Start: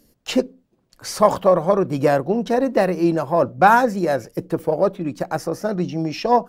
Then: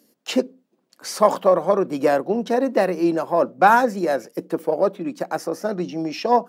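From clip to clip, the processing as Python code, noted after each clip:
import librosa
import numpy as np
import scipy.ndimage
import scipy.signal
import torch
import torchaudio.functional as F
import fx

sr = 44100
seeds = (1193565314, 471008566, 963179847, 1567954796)

y = scipy.signal.sosfilt(scipy.signal.butter(4, 200.0, 'highpass', fs=sr, output='sos'), x)
y = y * librosa.db_to_amplitude(-1.0)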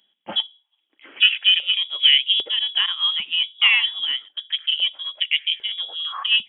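y = fx.freq_invert(x, sr, carrier_hz=3600)
y = fx.filter_held_highpass(y, sr, hz=2.5, low_hz=210.0, high_hz=2300.0)
y = y * librosa.db_to_amplitude(-3.5)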